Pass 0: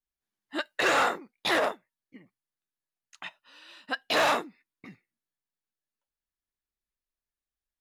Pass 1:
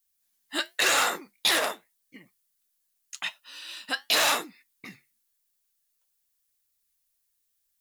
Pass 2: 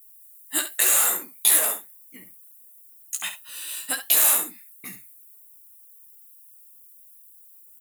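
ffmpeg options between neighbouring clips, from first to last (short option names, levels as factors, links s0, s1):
-af "alimiter=limit=0.075:level=0:latency=1:release=46,crystalizer=i=7:c=0,flanger=delay=5.4:depth=5.8:regen=-69:speed=0.89:shape=triangular,volume=1.58"
-filter_complex "[0:a]acompressor=threshold=0.0501:ratio=6,aexciter=amount=10.7:drive=5.3:freq=7500,asplit=2[s0][s1];[s1]aecho=0:1:16|67:0.531|0.316[s2];[s0][s2]amix=inputs=2:normalize=0"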